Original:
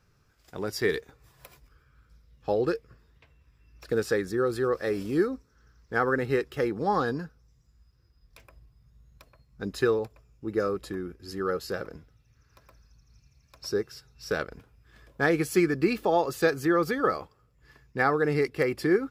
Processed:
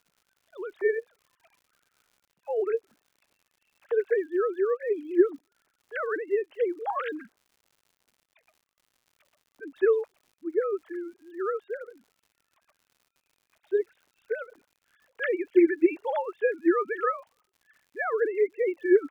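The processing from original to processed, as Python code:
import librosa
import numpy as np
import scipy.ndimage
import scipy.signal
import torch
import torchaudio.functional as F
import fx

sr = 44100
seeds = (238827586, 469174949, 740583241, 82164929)

y = fx.sine_speech(x, sr)
y = fx.dmg_crackle(y, sr, seeds[0], per_s=130.0, level_db=-51.0)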